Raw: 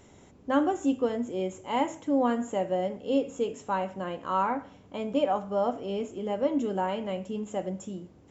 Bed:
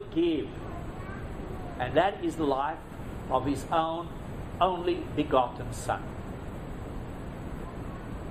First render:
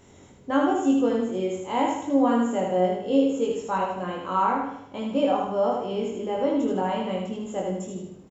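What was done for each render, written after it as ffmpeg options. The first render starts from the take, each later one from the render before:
-filter_complex "[0:a]asplit=2[a][b];[b]adelay=22,volume=-2dB[c];[a][c]amix=inputs=2:normalize=0,aecho=1:1:77|154|231|308|385|462:0.668|0.307|0.141|0.0651|0.0299|0.0138"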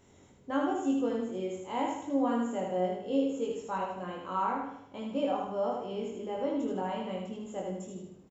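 -af "volume=-8dB"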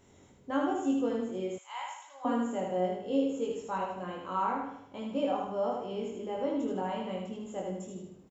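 -filter_complex "[0:a]asettb=1/sr,asplit=3[a][b][c];[a]atrim=end=1.584[d];[b]atrim=start=1.58:end=2.25,asetpts=PTS-STARTPTS,afade=t=in:d=0.004:c=qsin,afade=t=out:st=0.666:d=0.004:c=qsin,highpass=f=1k:w=0.5412,highpass=f=1k:w=1.3066[e];[c]atrim=start=2.246[f];[d][e]acrossfade=d=0.004:c1=hsin:c2=qsin[g];[g][f]acrossfade=d=0.004:c1=qsin:c2=hsin"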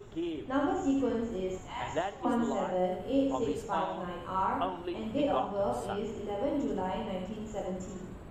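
-filter_complex "[1:a]volume=-9dB[a];[0:a][a]amix=inputs=2:normalize=0"

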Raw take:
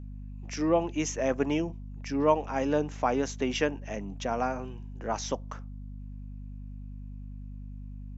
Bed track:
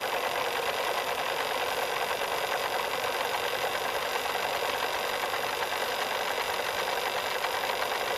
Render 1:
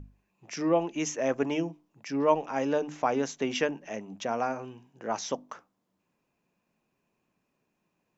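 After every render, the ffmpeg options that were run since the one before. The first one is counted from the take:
-af "bandreject=f=50:t=h:w=6,bandreject=f=100:t=h:w=6,bandreject=f=150:t=h:w=6,bandreject=f=200:t=h:w=6,bandreject=f=250:t=h:w=6,bandreject=f=300:t=h:w=6"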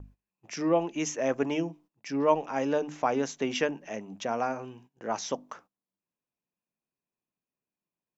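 -af "agate=range=-18dB:threshold=-54dB:ratio=16:detection=peak"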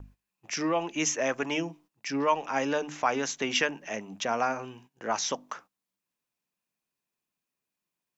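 -filter_complex "[0:a]acrossover=split=1000[a][b];[a]alimiter=limit=-22.5dB:level=0:latency=1:release=206[c];[b]acontrast=69[d];[c][d]amix=inputs=2:normalize=0"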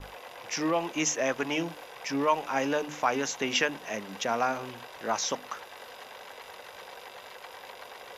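-filter_complex "[1:a]volume=-15.5dB[a];[0:a][a]amix=inputs=2:normalize=0"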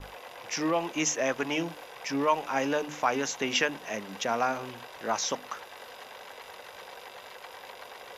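-af anull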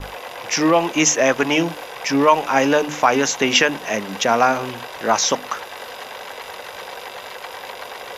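-af "volume=12dB,alimiter=limit=-2dB:level=0:latency=1"

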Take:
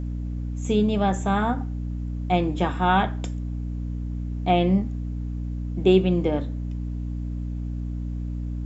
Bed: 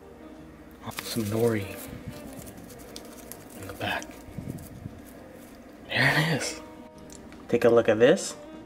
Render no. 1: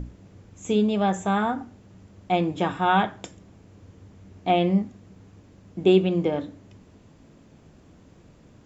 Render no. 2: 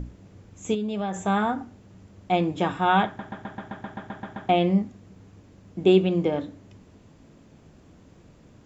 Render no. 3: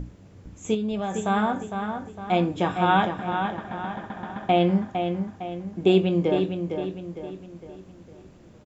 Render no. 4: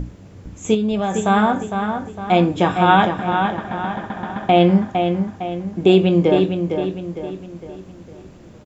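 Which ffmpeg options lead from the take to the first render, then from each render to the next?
-af "bandreject=f=60:t=h:w=6,bandreject=f=120:t=h:w=6,bandreject=f=180:t=h:w=6,bandreject=f=240:t=h:w=6,bandreject=f=300:t=h:w=6"
-filter_complex "[0:a]asettb=1/sr,asplit=3[a][b][c];[a]atrim=end=0.744[d];[b]atrim=start=0.74:end=1.23,asetpts=PTS-STARTPTS,afade=t=in:d=0.004:c=qsin,afade=t=out:st=0.486:d=0.004:c=qsin,acompressor=threshold=-25dB:ratio=6:attack=3.2:release=140:knee=1:detection=peak[e];[c]atrim=start=1.226[f];[d][e]acrossfade=d=0.004:c1=hsin:c2=qsin[g];[g][f]acrossfade=d=0.004:c1=qsin:c2=hsin,asplit=12[h][i][j][k][l][m][n][o][p][q][r][s];[h]atrim=end=3.192[t];[i]atrim=start=3.058:end=3.192[u];[j]atrim=start=3.058:end=3.192[v];[k]atrim=start=3.058:end=3.192[w];[l]atrim=start=3.058:end=3.192[x];[m]atrim=start=3.058:end=3.192[y];[n]atrim=start=3.058:end=3.192[z];[o]atrim=start=3.058:end=3.192[aa];[p]atrim=start=3.058:end=3.192[ab];[q]atrim=start=3.058:end=3.192[ac];[r]atrim=start=3.058:end=3.192[ad];[s]atrim=start=4.488[ae];[t][u]acrossfade=d=0.004:c1=hsin:c2=hsin[af];[af][v]acrossfade=d=0.004:c1=hsin:c2=hsin[ag];[ag][w]acrossfade=d=0.004:c1=hsin:c2=hsin[ah];[ah][x]acrossfade=d=0.004:c1=hsin:c2=hsin[ai];[ai][y]acrossfade=d=0.004:c1=hsin:c2=hsin[aj];[aj][z]acrossfade=d=0.004:c1=hsin:c2=hsin[ak];[ak][aa]acrossfade=d=0.004:c1=hsin:c2=hsin[al];[al][ab]acrossfade=d=0.004:c1=hsin:c2=hsin[am];[am][ac]acrossfade=d=0.004:c1=hsin:c2=hsin[an];[an][ad]acrossfade=d=0.004:c1=hsin:c2=hsin[ao];[ao][ae]acrossfade=d=0.004:c1=hsin:c2=hsin"
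-filter_complex "[0:a]asplit=2[a][b];[b]adelay=23,volume=-12dB[c];[a][c]amix=inputs=2:normalize=0,asplit=2[d][e];[e]adelay=457,lowpass=f=4.3k:p=1,volume=-6.5dB,asplit=2[f][g];[g]adelay=457,lowpass=f=4.3k:p=1,volume=0.46,asplit=2[h][i];[i]adelay=457,lowpass=f=4.3k:p=1,volume=0.46,asplit=2[j][k];[k]adelay=457,lowpass=f=4.3k:p=1,volume=0.46,asplit=2[l][m];[m]adelay=457,lowpass=f=4.3k:p=1,volume=0.46[n];[f][h][j][l][n]amix=inputs=5:normalize=0[o];[d][o]amix=inputs=2:normalize=0"
-af "volume=7.5dB,alimiter=limit=-3dB:level=0:latency=1"

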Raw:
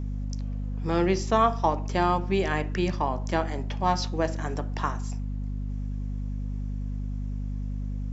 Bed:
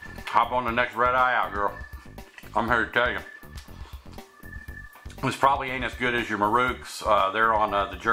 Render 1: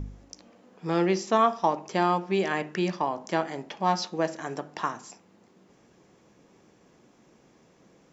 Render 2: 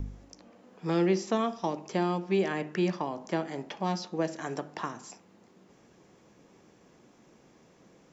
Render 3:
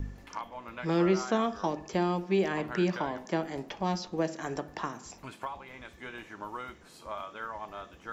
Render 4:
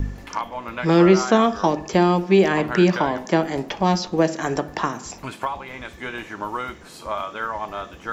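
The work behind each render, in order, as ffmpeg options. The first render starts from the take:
-af "bandreject=f=50:t=h:w=4,bandreject=f=100:t=h:w=4,bandreject=f=150:t=h:w=4,bandreject=f=200:t=h:w=4,bandreject=f=250:t=h:w=4"
-filter_complex "[0:a]acrossover=split=500|2000[a][b][c];[b]acompressor=threshold=-35dB:ratio=6[d];[c]alimiter=level_in=7dB:limit=-24dB:level=0:latency=1:release=392,volume=-7dB[e];[a][d][e]amix=inputs=3:normalize=0"
-filter_complex "[1:a]volume=-18dB[a];[0:a][a]amix=inputs=2:normalize=0"
-af "volume=11.5dB"

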